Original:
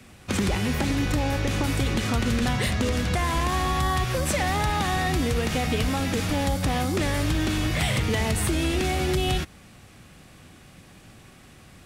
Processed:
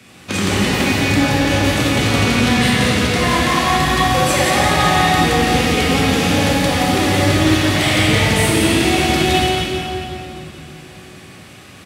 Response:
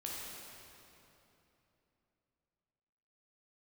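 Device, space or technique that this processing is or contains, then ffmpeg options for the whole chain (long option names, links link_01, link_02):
PA in a hall: -filter_complex "[0:a]highpass=110,equalizer=frequency=3200:width_type=o:width=2.1:gain=4,aecho=1:1:174:0.562[link_01];[1:a]atrim=start_sample=2205[link_02];[link_01][link_02]afir=irnorm=-1:irlink=0,volume=8dB"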